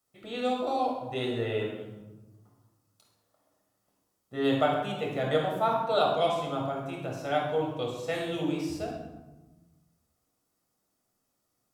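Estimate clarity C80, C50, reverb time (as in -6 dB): 5.0 dB, 2.0 dB, 1.2 s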